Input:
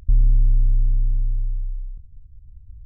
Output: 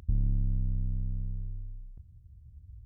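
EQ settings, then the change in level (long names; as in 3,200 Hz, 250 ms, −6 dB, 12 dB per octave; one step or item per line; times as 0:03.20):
high-pass filter 76 Hz 12 dB per octave
0.0 dB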